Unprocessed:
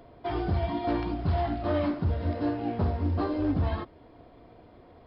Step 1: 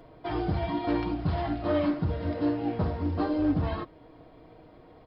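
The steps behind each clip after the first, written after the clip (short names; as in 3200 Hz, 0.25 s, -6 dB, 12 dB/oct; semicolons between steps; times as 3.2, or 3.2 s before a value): comb 6.4 ms, depth 40%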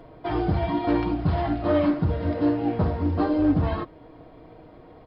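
high shelf 3600 Hz -6.5 dB; gain +5 dB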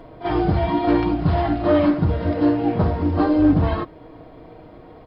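reverse echo 40 ms -12.5 dB; gain +4.5 dB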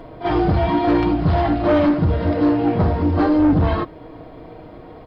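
soft clip -14 dBFS, distortion -15 dB; gain +4 dB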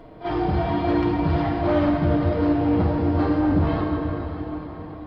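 plate-style reverb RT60 4.8 s, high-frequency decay 0.8×, DRR 0 dB; gain -7 dB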